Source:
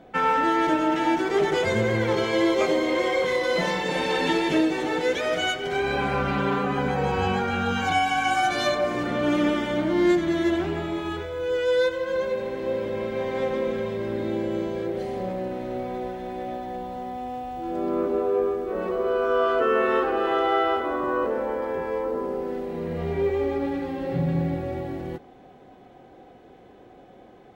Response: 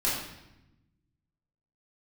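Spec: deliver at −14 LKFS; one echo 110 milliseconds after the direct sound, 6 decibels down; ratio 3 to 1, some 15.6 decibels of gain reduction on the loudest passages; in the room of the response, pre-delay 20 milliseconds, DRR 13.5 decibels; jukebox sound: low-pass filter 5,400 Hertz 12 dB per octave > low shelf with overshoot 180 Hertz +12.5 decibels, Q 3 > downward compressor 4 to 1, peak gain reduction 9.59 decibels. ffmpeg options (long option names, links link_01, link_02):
-filter_complex "[0:a]acompressor=threshold=-40dB:ratio=3,aecho=1:1:110:0.501,asplit=2[link_01][link_02];[1:a]atrim=start_sample=2205,adelay=20[link_03];[link_02][link_03]afir=irnorm=-1:irlink=0,volume=-23.5dB[link_04];[link_01][link_04]amix=inputs=2:normalize=0,lowpass=5400,lowshelf=frequency=180:width_type=q:width=3:gain=12.5,acompressor=threshold=-31dB:ratio=4,volume=23dB"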